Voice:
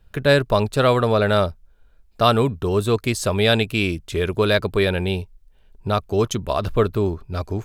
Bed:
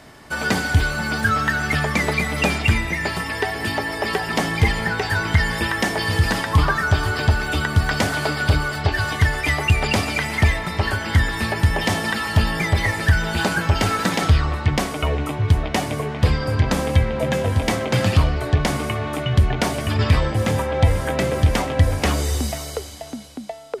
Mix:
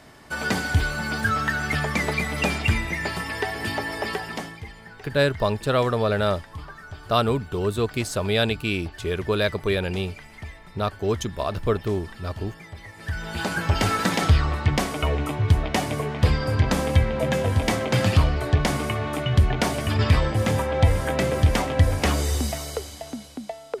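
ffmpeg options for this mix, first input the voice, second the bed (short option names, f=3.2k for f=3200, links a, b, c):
-filter_complex "[0:a]adelay=4900,volume=-4.5dB[a];[1:a]volume=15.5dB,afade=t=out:st=3.99:d=0.62:silence=0.133352,afade=t=in:st=12.94:d=0.93:silence=0.105925[b];[a][b]amix=inputs=2:normalize=0"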